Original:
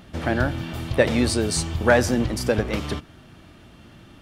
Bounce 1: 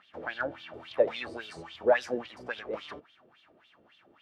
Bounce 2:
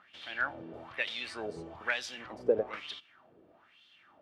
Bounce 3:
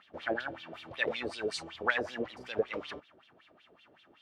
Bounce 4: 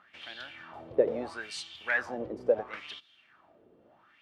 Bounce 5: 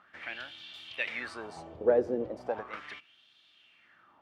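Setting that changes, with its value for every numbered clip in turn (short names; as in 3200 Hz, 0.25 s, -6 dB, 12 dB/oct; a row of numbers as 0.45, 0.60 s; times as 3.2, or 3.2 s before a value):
wah, rate: 3.6, 1.1, 5.3, 0.74, 0.37 Hz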